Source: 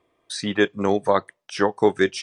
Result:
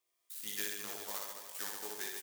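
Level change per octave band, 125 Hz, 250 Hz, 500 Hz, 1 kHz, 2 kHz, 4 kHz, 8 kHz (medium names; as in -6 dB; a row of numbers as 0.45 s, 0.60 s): -32.5 dB, -31.0 dB, -29.5 dB, -24.0 dB, -18.0 dB, -13.0 dB, -3.0 dB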